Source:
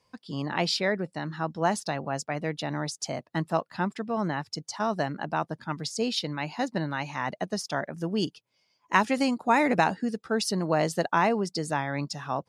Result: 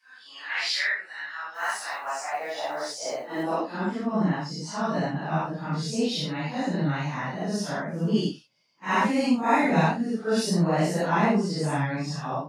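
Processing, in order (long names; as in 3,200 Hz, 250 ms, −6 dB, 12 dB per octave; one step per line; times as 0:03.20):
random phases in long frames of 200 ms
0:01.54–0:03.43: noise that follows the level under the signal 31 dB
high-pass filter sweep 1,700 Hz → 160 Hz, 0:01.44–0:04.44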